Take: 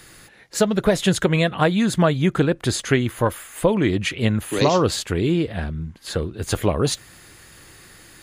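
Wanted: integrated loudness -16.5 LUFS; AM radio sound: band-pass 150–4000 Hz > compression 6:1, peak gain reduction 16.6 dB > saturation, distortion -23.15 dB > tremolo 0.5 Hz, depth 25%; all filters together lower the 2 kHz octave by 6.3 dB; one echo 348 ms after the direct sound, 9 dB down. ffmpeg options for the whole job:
-af "highpass=150,lowpass=4000,equalizer=f=2000:t=o:g=-8,aecho=1:1:348:0.355,acompressor=threshold=0.0316:ratio=6,asoftclip=threshold=0.1,tremolo=f=0.5:d=0.25,volume=9.44"

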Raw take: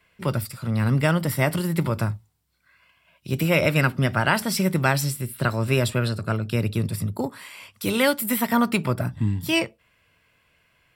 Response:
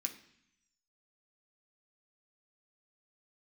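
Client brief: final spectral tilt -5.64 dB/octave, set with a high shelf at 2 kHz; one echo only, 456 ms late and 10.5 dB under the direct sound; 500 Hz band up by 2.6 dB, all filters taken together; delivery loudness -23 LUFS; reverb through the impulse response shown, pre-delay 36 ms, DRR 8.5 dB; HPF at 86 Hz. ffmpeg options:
-filter_complex "[0:a]highpass=86,equalizer=f=500:t=o:g=3.5,highshelf=f=2000:g=-4,aecho=1:1:456:0.299,asplit=2[s0][s1];[1:a]atrim=start_sample=2205,adelay=36[s2];[s1][s2]afir=irnorm=-1:irlink=0,volume=0.447[s3];[s0][s3]amix=inputs=2:normalize=0"

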